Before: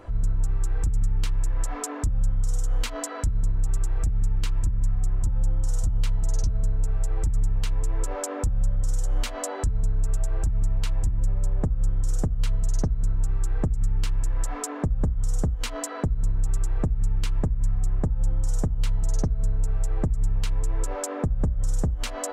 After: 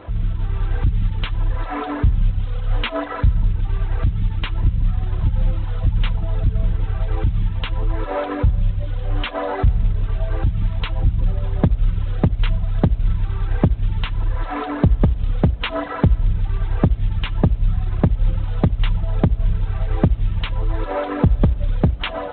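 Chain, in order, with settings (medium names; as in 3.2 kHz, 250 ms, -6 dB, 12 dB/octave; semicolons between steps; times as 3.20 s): modulation noise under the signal 31 dB; dynamic bell 440 Hz, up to -3 dB, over -51 dBFS, Q 3.7; level rider gain up to 4.5 dB; reverberation RT60 2.2 s, pre-delay 53 ms, DRR 10.5 dB; reverb removal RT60 1.6 s; high-pass 43 Hz 12 dB/octave; 2.60–3.35 s: de-hum 362.2 Hz, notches 3; 8.35–9.35 s: comb of notches 220 Hz; trim +7 dB; G.726 24 kbps 8 kHz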